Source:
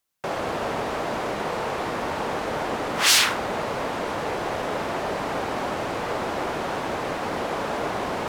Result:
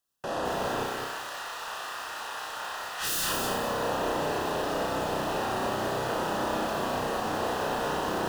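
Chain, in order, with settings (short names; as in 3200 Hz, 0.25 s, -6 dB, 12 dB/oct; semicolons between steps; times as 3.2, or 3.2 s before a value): 0.83–3.24 HPF 1300 Hz 12 dB/oct; wavefolder -22 dBFS; Butterworth band-stop 2200 Hz, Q 4; flutter echo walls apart 5.5 m, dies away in 0.59 s; lo-fi delay 0.211 s, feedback 35%, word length 6-bit, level -3.5 dB; gain -5 dB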